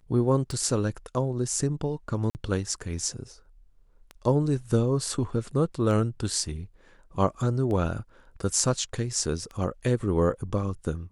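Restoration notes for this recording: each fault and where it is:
tick 33 1/3 rpm
2.30–2.35 s: dropout 49 ms

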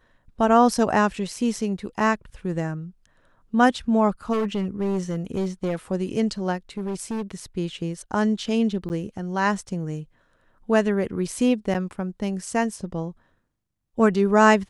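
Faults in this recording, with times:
4.32–5.76 s: clipped -20.5 dBFS
6.77–7.22 s: clipped -24.5 dBFS
8.89–8.90 s: dropout 9.8 ms
11.74–11.75 s: dropout 7.6 ms

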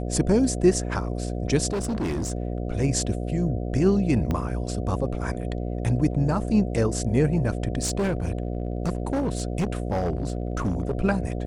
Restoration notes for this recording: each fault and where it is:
buzz 60 Hz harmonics 12 -29 dBFS
1.72–2.32 s: clipped -23.5 dBFS
4.31 s: pop -14 dBFS
7.82–10.93 s: clipped -20.5 dBFS

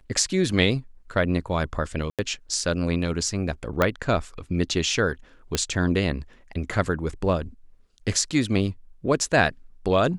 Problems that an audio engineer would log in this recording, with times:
2.10–2.19 s: dropout 87 ms
3.82 s: pop -7 dBFS
5.55 s: pop -8 dBFS

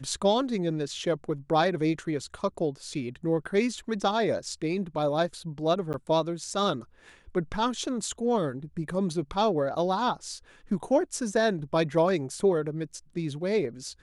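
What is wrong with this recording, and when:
5.93–5.94 s: dropout 9.8 ms

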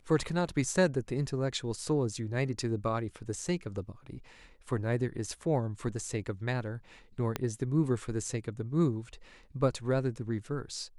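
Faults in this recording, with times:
7.36 s: pop -16 dBFS

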